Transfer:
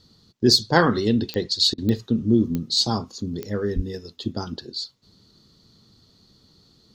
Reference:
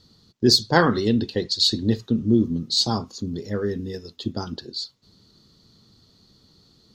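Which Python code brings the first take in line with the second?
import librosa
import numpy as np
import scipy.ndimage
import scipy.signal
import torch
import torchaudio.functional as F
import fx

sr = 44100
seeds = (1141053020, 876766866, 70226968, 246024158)

y = fx.fix_declick_ar(x, sr, threshold=10.0)
y = fx.highpass(y, sr, hz=140.0, slope=24, at=(3.75, 3.87), fade=0.02)
y = fx.fix_interpolate(y, sr, at_s=(1.74,), length_ms=38.0)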